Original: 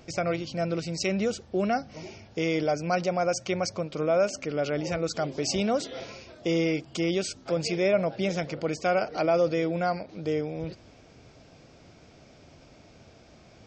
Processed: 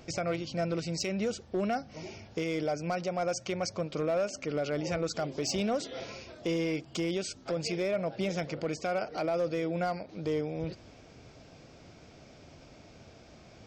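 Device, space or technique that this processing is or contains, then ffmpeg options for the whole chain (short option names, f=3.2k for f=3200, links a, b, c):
limiter into clipper: -af "alimiter=limit=-21.5dB:level=0:latency=1:release=445,asoftclip=type=hard:threshold=-24dB"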